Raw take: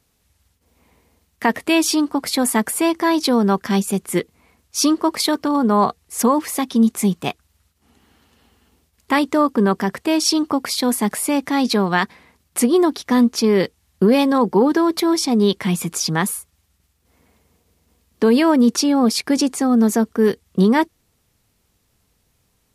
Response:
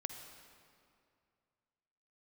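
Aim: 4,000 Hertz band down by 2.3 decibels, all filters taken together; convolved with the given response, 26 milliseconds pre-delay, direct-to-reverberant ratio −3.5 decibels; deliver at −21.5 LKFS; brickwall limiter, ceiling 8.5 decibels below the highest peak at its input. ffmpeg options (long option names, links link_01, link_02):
-filter_complex "[0:a]equalizer=frequency=4000:width_type=o:gain=-3,alimiter=limit=-13.5dB:level=0:latency=1,asplit=2[link_01][link_02];[1:a]atrim=start_sample=2205,adelay=26[link_03];[link_02][link_03]afir=irnorm=-1:irlink=0,volume=5dB[link_04];[link_01][link_04]amix=inputs=2:normalize=0,volume=-4dB"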